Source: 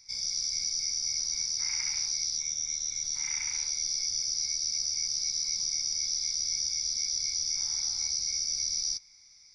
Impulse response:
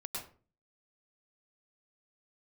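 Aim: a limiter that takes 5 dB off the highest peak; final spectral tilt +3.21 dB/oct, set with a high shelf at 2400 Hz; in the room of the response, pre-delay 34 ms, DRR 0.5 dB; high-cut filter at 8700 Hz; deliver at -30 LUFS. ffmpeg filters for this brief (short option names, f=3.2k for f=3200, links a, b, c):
-filter_complex "[0:a]lowpass=8.7k,highshelf=f=2.4k:g=3.5,alimiter=limit=-20dB:level=0:latency=1,asplit=2[a][b];[1:a]atrim=start_sample=2205,adelay=34[c];[b][c]afir=irnorm=-1:irlink=0,volume=-0.5dB[d];[a][d]amix=inputs=2:normalize=0,volume=-5dB"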